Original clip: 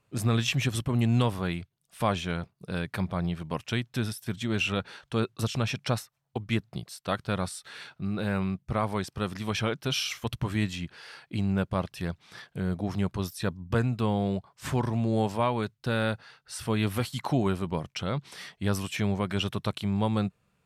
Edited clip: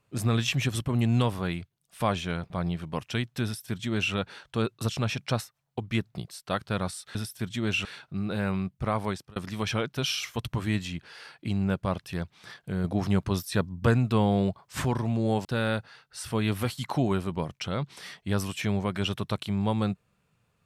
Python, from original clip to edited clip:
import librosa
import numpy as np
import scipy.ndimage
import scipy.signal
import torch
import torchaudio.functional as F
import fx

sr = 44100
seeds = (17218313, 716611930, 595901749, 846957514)

y = fx.edit(x, sr, fx.cut(start_s=2.5, length_s=0.58),
    fx.duplicate(start_s=4.02, length_s=0.7, to_s=7.73),
    fx.fade_out_span(start_s=8.98, length_s=0.26),
    fx.clip_gain(start_s=12.72, length_s=2.01, db=3.5),
    fx.cut(start_s=15.33, length_s=0.47), tone=tone)